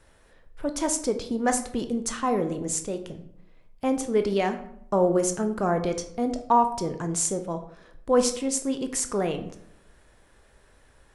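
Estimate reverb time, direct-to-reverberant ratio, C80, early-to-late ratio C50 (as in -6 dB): 0.70 s, 7.0 dB, 14.5 dB, 10.5 dB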